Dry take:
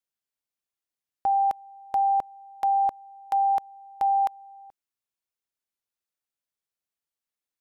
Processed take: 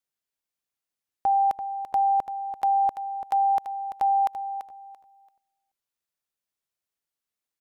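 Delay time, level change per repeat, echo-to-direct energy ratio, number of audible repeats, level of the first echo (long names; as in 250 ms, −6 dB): 338 ms, −13.0 dB, −10.0 dB, 2, −10.0 dB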